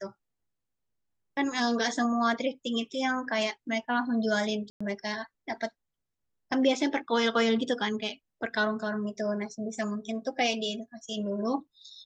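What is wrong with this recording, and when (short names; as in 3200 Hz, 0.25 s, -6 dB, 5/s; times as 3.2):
4.7–4.8 gap 0.105 s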